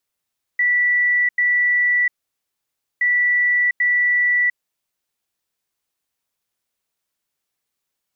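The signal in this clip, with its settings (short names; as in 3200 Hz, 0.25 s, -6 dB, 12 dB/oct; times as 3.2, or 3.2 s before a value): beep pattern sine 1960 Hz, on 0.70 s, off 0.09 s, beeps 2, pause 0.93 s, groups 2, -14 dBFS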